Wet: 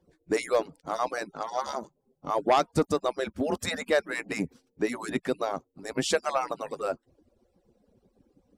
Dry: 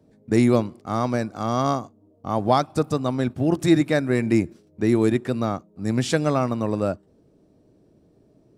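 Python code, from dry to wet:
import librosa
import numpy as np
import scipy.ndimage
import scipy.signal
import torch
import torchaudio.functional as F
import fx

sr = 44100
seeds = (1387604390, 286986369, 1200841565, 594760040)

y = fx.hpss_only(x, sr, part='percussive')
y = fx.fold_sine(y, sr, drive_db=4, ceiling_db=-6.5)
y = fx.env_lowpass(y, sr, base_hz=1000.0, full_db=-20.0, at=(1.31, 1.78), fade=0.02)
y = y * librosa.db_to_amplitude(-8.0)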